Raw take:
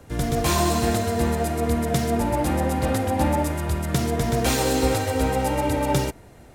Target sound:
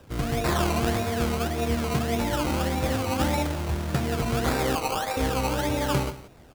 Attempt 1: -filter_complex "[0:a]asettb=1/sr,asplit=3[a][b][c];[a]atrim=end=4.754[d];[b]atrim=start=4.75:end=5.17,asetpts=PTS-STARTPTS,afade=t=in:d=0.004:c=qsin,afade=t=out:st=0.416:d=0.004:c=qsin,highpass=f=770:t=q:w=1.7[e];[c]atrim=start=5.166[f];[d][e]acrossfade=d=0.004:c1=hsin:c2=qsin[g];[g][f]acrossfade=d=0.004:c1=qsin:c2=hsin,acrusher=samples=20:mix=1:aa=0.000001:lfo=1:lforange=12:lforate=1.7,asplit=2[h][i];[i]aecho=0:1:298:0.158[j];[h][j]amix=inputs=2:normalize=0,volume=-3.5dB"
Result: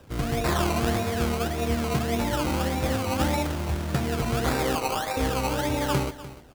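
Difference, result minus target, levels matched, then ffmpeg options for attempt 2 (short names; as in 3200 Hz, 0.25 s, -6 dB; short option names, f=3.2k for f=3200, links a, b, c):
echo 0.129 s late
-filter_complex "[0:a]asettb=1/sr,asplit=3[a][b][c];[a]atrim=end=4.754[d];[b]atrim=start=4.75:end=5.17,asetpts=PTS-STARTPTS,afade=t=in:d=0.004:c=qsin,afade=t=out:st=0.416:d=0.004:c=qsin,highpass=f=770:t=q:w=1.7[e];[c]atrim=start=5.166[f];[d][e]acrossfade=d=0.004:c1=hsin:c2=qsin[g];[g][f]acrossfade=d=0.004:c1=qsin:c2=hsin,acrusher=samples=20:mix=1:aa=0.000001:lfo=1:lforange=12:lforate=1.7,asplit=2[h][i];[i]aecho=0:1:169:0.158[j];[h][j]amix=inputs=2:normalize=0,volume=-3.5dB"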